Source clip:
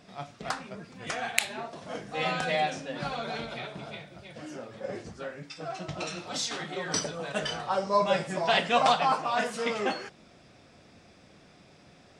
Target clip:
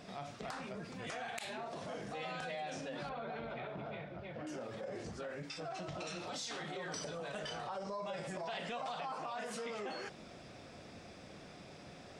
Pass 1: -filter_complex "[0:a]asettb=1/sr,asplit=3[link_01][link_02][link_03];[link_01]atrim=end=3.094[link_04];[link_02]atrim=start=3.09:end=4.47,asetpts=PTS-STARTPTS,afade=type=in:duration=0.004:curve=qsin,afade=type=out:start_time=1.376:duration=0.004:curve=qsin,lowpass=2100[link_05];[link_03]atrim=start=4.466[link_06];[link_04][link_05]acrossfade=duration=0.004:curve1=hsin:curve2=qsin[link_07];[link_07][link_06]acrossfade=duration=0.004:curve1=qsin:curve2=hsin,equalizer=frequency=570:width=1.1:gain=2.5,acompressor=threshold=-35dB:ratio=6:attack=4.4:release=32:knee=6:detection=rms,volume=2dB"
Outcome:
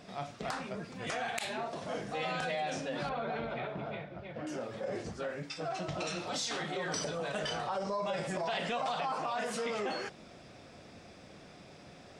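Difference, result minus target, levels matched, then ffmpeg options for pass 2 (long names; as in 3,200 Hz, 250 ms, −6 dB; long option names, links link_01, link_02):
downward compressor: peak gain reduction −7 dB
-filter_complex "[0:a]asettb=1/sr,asplit=3[link_01][link_02][link_03];[link_01]atrim=end=3.094[link_04];[link_02]atrim=start=3.09:end=4.47,asetpts=PTS-STARTPTS,afade=type=in:duration=0.004:curve=qsin,afade=type=out:start_time=1.376:duration=0.004:curve=qsin,lowpass=2100[link_05];[link_03]atrim=start=4.466[link_06];[link_04][link_05]acrossfade=duration=0.004:curve1=hsin:curve2=qsin[link_07];[link_07][link_06]acrossfade=duration=0.004:curve1=qsin:curve2=hsin,equalizer=frequency=570:width=1.1:gain=2.5,acompressor=threshold=-43.5dB:ratio=6:attack=4.4:release=32:knee=6:detection=rms,volume=2dB"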